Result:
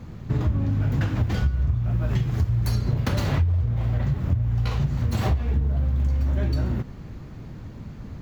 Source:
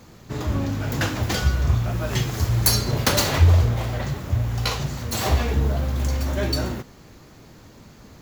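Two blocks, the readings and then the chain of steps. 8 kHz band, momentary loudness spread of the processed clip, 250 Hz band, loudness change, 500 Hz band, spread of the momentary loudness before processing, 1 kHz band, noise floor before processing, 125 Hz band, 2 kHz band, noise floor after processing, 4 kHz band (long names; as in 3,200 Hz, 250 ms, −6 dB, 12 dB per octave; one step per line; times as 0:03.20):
below −15 dB, 16 LU, −1.0 dB, −2.0 dB, −7.0 dB, 9 LU, −7.5 dB, −48 dBFS, 0.0 dB, −8.5 dB, −39 dBFS, −13.5 dB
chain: bass and treble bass +12 dB, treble −11 dB
downward compressor 12 to 1, threshold −19 dBFS, peak gain reduction 21.5 dB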